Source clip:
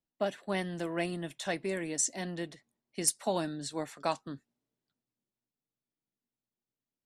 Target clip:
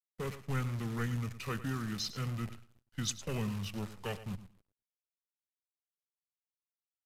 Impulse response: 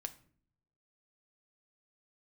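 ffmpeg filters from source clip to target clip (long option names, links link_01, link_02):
-filter_complex "[0:a]bandreject=frequency=1000:width=5.9,acrossover=split=120|1600[link_01][link_02][link_03];[link_02]volume=30.5dB,asoftclip=hard,volume=-30.5dB[link_04];[link_01][link_04][link_03]amix=inputs=3:normalize=0,equalizer=frequency=500:width_type=o:width=1:gain=-7,equalizer=frequency=1000:width_type=o:width=1:gain=-4,equalizer=frequency=8000:width_type=o:width=1:gain=-9,asplit=2[link_05][link_06];[1:a]atrim=start_sample=2205,asetrate=29988,aresample=44100[link_07];[link_06][link_07]afir=irnorm=-1:irlink=0,volume=-7dB[link_08];[link_05][link_08]amix=inputs=2:normalize=0,acrusher=bits=8:dc=4:mix=0:aa=0.000001,lowshelf=frequency=180:gain=10,aecho=1:1:107|214:0.2|0.0339,asetrate=30296,aresample=44100,atempo=1.45565,volume=-3dB"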